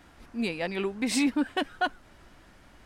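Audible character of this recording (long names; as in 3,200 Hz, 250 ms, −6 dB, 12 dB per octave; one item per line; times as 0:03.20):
background noise floor −56 dBFS
spectral slope −3.5 dB per octave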